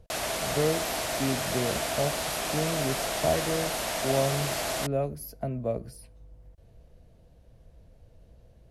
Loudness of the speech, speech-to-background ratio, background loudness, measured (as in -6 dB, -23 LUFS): -32.0 LUFS, -2.0 dB, -30.0 LUFS